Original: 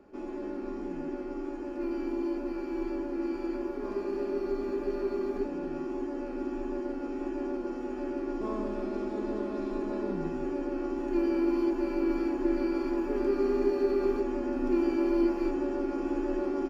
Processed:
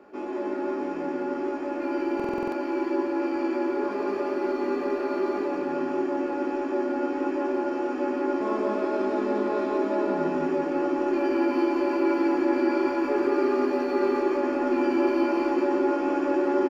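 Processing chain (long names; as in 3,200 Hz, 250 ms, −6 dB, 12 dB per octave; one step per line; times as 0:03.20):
high-pass filter 760 Hz 6 dB per octave
high-shelf EQ 3,600 Hz −10.5 dB
in parallel at −0.5 dB: brickwall limiter −30.5 dBFS, peak gain reduction 7 dB
on the sum: double-tracking delay 19 ms −7 dB
on a send: repeating echo 173 ms, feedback 56%, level −4 dB
on the sum: buffer that repeats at 0:02.15, samples 2,048, times 7
level +5.5 dB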